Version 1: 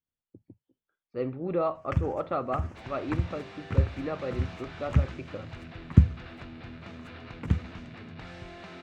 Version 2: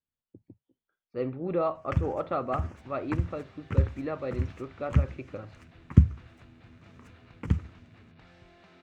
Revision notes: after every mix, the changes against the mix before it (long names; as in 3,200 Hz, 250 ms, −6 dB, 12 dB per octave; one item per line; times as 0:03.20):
second sound −12.0 dB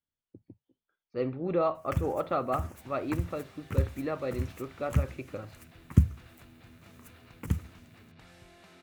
first sound −3.5 dB
master: remove high-frequency loss of the air 140 metres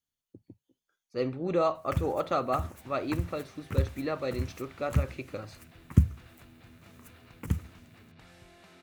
speech: remove high-frequency loss of the air 280 metres